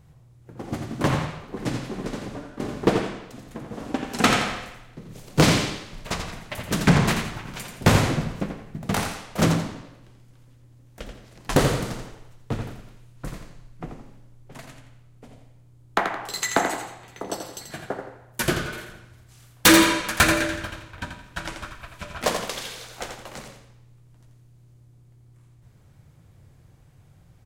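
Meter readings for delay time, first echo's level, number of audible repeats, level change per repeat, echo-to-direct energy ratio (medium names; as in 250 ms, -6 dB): 85 ms, -7.0 dB, 2, -10.0 dB, -6.5 dB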